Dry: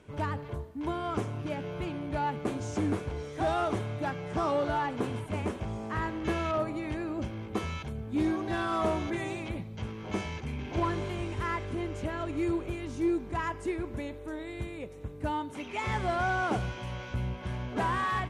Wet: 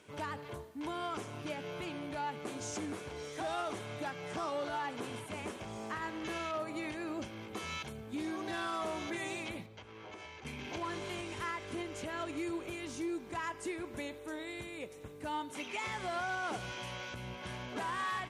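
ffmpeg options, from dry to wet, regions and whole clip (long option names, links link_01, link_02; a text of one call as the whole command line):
ffmpeg -i in.wav -filter_complex "[0:a]asettb=1/sr,asplit=3[link_01][link_02][link_03];[link_01]atrim=end=9.664[link_04];[link_02]atrim=start=9.66:end=10.45,asetpts=PTS-STARTPTS,afade=type=in:duration=0.004:curve=qsin,afade=type=out:start_time=0.786:duration=0.004:curve=qsin,lowpass=frequency=2300:poles=1,equalizer=frequency=190:width=2:gain=-12.5,acompressor=threshold=-41dB:ratio=12:attack=3.2:release=140:knee=1:detection=peak[link_05];[link_03]atrim=start=10.446[link_06];[link_04][link_05]acrossfade=duration=0.004:curve1=hsin:curve2=qsin[link_07];[link_07][link_06]acrossfade=duration=0.004:curve1=qsin:curve2=hsin,highshelf=frequency=2400:gain=8.5,alimiter=level_in=1.5dB:limit=-24dB:level=0:latency=1:release=175,volume=-1.5dB,highpass=frequency=280:poles=1,volume=-2.5dB" out.wav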